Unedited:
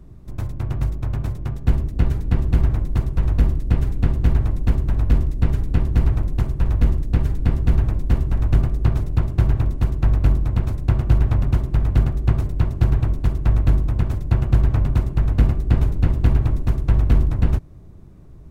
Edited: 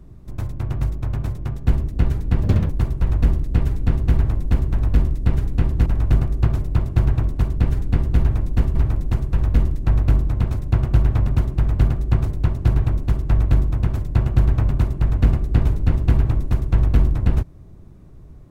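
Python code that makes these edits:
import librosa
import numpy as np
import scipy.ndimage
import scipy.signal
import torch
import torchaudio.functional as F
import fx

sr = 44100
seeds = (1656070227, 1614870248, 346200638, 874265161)

y = fx.edit(x, sr, fx.speed_span(start_s=2.43, length_s=0.43, speed=1.59),
    fx.swap(start_s=6.02, length_s=1.09, other_s=8.28, other_length_s=1.72), tone=tone)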